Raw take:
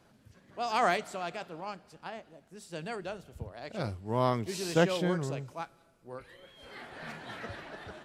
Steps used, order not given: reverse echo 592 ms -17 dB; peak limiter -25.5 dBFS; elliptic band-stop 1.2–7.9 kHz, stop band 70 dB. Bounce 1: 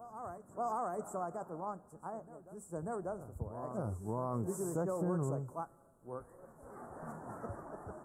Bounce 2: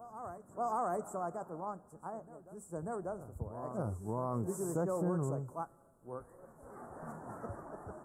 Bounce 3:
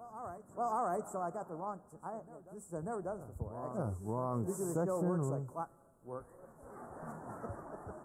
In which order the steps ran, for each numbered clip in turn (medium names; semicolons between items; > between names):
reverse echo > peak limiter > elliptic band-stop; reverse echo > elliptic band-stop > peak limiter; elliptic band-stop > reverse echo > peak limiter